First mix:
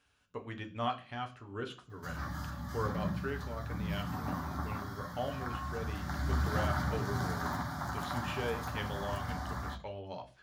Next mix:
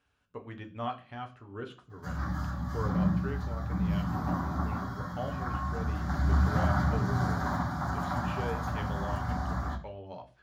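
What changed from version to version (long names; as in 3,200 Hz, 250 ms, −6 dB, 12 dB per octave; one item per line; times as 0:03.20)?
background: send +8.5 dB
master: add high-shelf EQ 2,600 Hz −9 dB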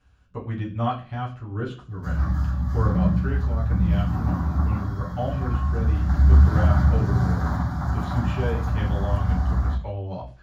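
speech: send +10.5 dB
master: remove high-pass filter 280 Hz 6 dB per octave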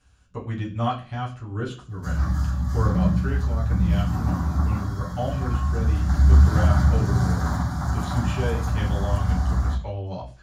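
master: add parametric band 8,600 Hz +13 dB 1.6 octaves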